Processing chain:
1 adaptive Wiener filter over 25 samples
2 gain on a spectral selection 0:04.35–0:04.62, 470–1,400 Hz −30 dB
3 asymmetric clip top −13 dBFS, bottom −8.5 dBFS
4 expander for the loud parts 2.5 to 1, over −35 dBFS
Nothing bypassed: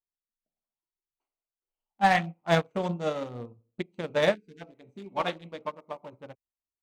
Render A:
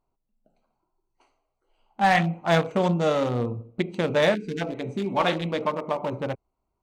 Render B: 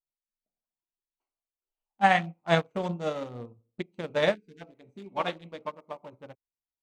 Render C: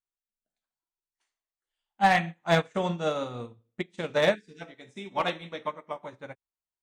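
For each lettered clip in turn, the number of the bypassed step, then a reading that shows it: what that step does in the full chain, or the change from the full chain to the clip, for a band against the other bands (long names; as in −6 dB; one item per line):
4, 250 Hz band +3.5 dB
3, distortion level −21 dB
1, change in momentary loudness spread +1 LU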